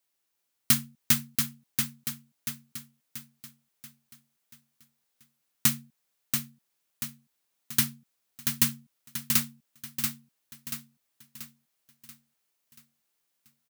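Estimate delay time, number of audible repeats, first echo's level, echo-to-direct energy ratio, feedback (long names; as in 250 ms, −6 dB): 684 ms, 5, −5.0 dB, −4.0 dB, 46%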